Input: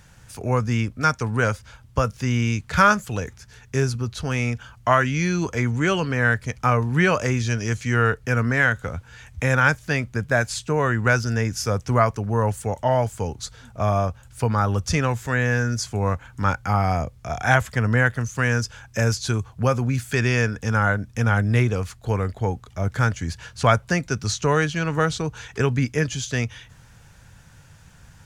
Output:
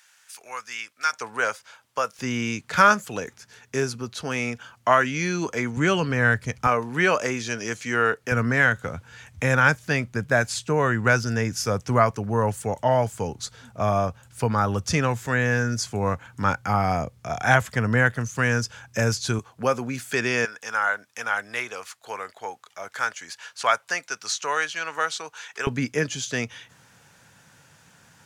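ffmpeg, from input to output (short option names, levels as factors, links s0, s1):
-af "asetnsamples=n=441:p=0,asendcmd='1.13 highpass f 580;2.19 highpass f 230;5.77 highpass f 94;6.67 highpass f 280;8.32 highpass f 120;19.39 highpass f 270;20.45 highpass f 820;25.67 highpass f 210',highpass=1500"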